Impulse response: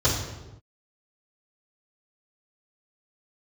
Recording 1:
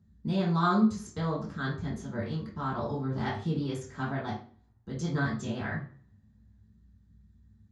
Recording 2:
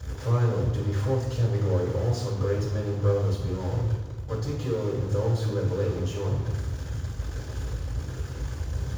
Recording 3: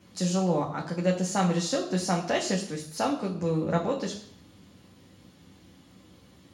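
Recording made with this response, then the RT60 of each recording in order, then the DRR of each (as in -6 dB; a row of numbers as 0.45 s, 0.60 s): 2; 0.45 s, no single decay rate, 0.65 s; -6.0 dB, -9.0 dB, -0.5 dB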